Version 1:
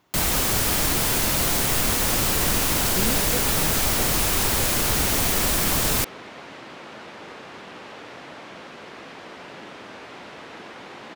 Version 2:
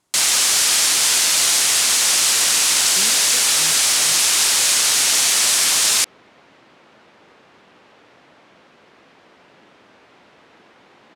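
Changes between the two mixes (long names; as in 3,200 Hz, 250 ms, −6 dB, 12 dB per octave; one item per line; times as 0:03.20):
speech −7.5 dB
first sound: add meter weighting curve ITU-R 468
second sound −10.5 dB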